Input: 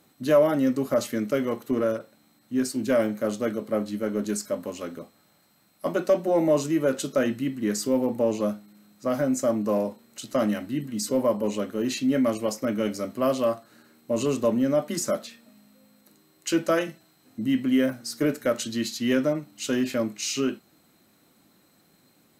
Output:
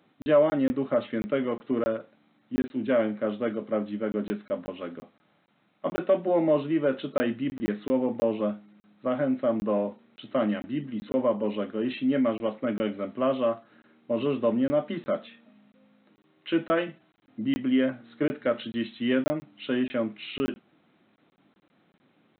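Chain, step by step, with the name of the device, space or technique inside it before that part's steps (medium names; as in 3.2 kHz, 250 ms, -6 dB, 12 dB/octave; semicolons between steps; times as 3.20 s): call with lost packets (high-pass 120 Hz 12 dB/octave; resampled via 8 kHz; lost packets of 20 ms random); trim -1.5 dB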